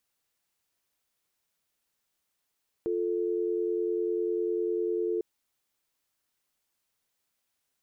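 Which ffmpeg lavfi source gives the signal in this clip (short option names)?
-f lavfi -i "aevalsrc='0.0355*(sin(2*PI*350*t)+sin(2*PI*440*t))':d=2.35:s=44100"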